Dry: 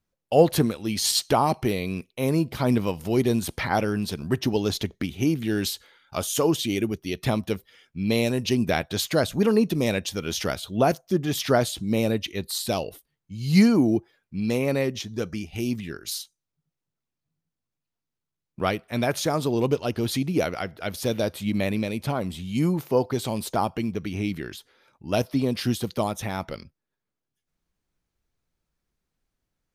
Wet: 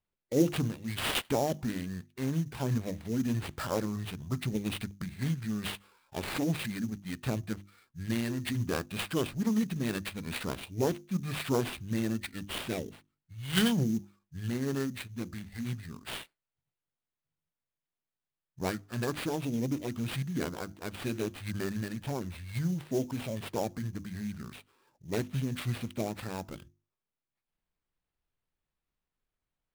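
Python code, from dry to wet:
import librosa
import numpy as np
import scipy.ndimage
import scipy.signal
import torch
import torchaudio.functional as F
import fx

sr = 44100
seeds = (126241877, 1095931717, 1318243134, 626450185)

y = fx.formant_shift(x, sr, semitones=-6)
y = fx.hum_notches(y, sr, base_hz=50, count=7)
y = fx.sample_hold(y, sr, seeds[0], rate_hz=6300.0, jitter_pct=20)
y = y * 10.0 ** (-7.5 / 20.0)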